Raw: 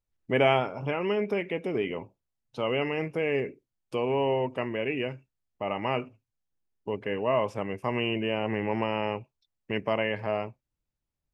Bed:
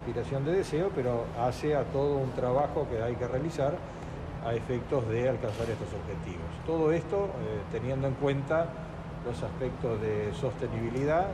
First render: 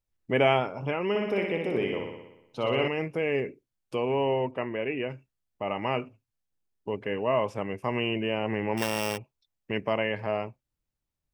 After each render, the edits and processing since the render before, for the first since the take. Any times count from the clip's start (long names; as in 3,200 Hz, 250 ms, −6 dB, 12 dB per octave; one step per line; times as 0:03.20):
0:01.09–0:02.88: flutter between parallel walls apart 10.4 metres, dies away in 0.92 s
0:04.51–0:05.10: bass and treble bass −3 dB, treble −14 dB
0:08.77–0:09.18: samples sorted by size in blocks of 16 samples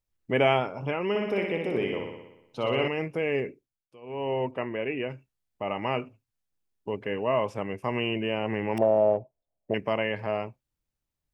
0:03.48–0:04.43: duck −21.5 dB, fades 0.42 s
0:08.78–0:09.74: low-pass with resonance 640 Hz, resonance Q 6.9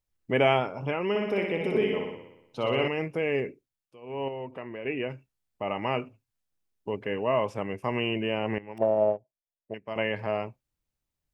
0:01.60–0:02.15: comb filter 4.7 ms, depth 71%
0:04.28–0:04.85: downward compressor 2 to 1, threshold −39 dBFS
0:08.58–0:09.96: expander for the loud parts 2.5 to 1, over −33 dBFS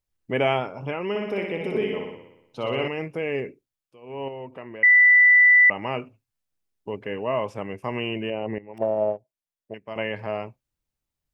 0:04.83–0:05.70: beep over 1,980 Hz −11 dBFS
0:08.30–0:08.74: spectral envelope exaggerated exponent 1.5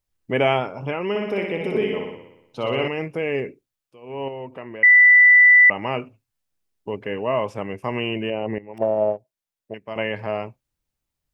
level +3 dB